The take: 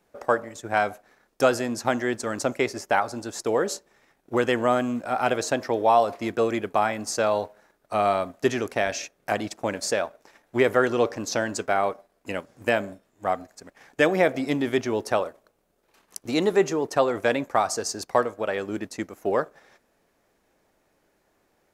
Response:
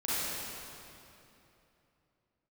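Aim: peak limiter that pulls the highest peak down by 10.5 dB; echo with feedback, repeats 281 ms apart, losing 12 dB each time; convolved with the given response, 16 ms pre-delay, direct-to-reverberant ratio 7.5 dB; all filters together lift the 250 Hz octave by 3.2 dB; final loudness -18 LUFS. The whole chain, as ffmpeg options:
-filter_complex "[0:a]equalizer=f=250:t=o:g=4,alimiter=limit=0.178:level=0:latency=1,aecho=1:1:281|562|843:0.251|0.0628|0.0157,asplit=2[s0][s1];[1:a]atrim=start_sample=2205,adelay=16[s2];[s1][s2]afir=irnorm=-1:irlink=0,volume=0.158[s3];[s0][s3]amix=inputs=2:normalize=0,volume=2.82"

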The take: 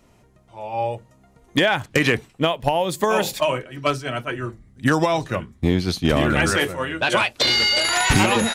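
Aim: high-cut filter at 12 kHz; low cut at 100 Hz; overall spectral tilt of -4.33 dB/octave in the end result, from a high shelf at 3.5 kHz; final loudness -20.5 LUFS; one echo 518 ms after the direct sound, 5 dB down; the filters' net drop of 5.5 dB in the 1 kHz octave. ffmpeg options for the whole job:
-af "highpass=100,lowpass=12000,equalizer=f=1000:t=o:g=-7,highshelf=f=3500:g=-4,aecho=1:1:518:0.562,volume=1.19"

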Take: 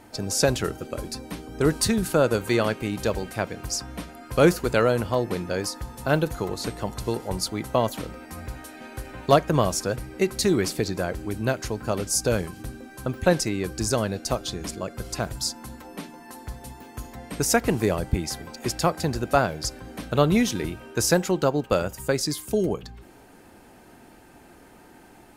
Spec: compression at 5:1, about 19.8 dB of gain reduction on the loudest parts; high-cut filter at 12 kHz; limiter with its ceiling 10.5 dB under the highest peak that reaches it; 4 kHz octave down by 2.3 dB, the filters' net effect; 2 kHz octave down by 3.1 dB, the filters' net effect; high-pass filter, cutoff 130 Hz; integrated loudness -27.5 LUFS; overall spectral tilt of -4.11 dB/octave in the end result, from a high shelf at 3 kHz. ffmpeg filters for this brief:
-af "highpass=130,lowpass=12000,equalizer=f=2000:t=o:g=-4.5,highshelf=f=3000:g=3.5,equalizer=f=4000:t=o:g=-5.5,acompressor=threshold=0.0178:ratio=5,volume=4.73,alimiter=limit=0.168:level=0:latency=1"

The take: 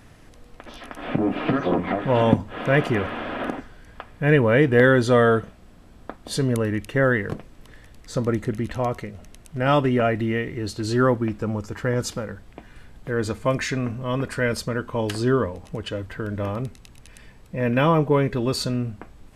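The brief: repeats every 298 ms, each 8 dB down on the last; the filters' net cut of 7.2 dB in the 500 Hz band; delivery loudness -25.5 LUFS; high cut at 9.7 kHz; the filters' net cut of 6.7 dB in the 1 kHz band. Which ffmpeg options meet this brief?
-af "lowpass=9700,equalizer=f=500:t=o:g=-7,equalizer=f=1000:t=o:g=-7,aecho=1:1:298|596|894|1192|1490:0.398|0.159|0.0637|0.0255|0.0102"

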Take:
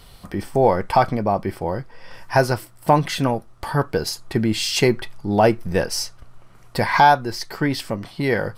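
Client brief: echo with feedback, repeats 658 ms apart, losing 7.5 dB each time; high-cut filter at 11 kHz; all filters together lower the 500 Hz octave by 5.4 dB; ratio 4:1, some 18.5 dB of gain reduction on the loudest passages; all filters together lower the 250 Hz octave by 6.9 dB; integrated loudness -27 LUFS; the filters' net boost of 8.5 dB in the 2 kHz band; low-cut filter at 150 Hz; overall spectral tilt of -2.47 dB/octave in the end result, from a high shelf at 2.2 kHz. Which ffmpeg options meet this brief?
-af "highpass=150,lowpass=11000,equalizer=f=250:t=o:g=-6.5,equalizer=f=500:t=o:g=-6.5,equalizer=f=2000:t=o:g=7.5,highshelf=f=2200:g=8,acompressor=threshold=0.0316:ratio=4,aecho=1:1:658|1316|1974|2632|3290:0.422|0.177|0.0744|0.0312|0.0131,volume=1.58"

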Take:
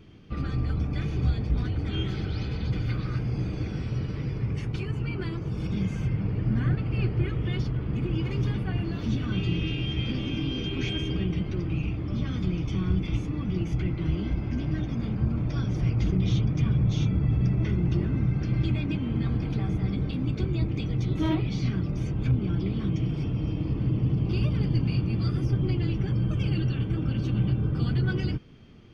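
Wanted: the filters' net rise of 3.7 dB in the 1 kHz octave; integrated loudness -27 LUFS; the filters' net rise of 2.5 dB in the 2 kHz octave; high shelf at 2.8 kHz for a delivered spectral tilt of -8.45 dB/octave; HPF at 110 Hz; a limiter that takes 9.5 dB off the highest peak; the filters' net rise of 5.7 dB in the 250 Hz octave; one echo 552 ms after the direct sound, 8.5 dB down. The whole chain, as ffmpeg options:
-af "highpass=110,equalizer=f=250:t=o:g=8.5,equalizer=f=1000:t=o:g=4,equalizer=f=2000:t=o:g=6,highshelf=f=2800:g=-9,alimiter=limit=0.106:level=0:latency=1,aecho=1:1:552:0.376,volume=1.06"

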